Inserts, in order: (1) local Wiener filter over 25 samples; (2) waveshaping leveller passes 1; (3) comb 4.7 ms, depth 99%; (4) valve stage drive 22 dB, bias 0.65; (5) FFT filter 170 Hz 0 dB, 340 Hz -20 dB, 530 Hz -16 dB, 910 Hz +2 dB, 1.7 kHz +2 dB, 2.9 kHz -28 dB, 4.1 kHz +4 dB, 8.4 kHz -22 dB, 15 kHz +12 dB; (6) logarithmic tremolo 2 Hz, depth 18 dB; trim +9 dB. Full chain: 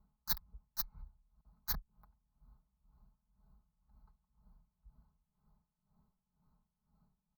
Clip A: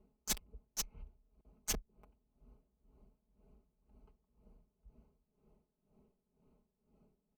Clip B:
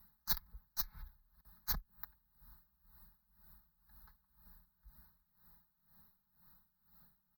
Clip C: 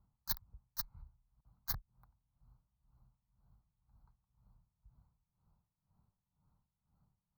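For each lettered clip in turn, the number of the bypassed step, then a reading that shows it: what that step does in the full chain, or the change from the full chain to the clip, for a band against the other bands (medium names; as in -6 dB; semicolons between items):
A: 5, crest factor change -5.5 dB; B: 1, momentary loudness spread change +10 LU; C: 3, 125 Hz band +3.0 dB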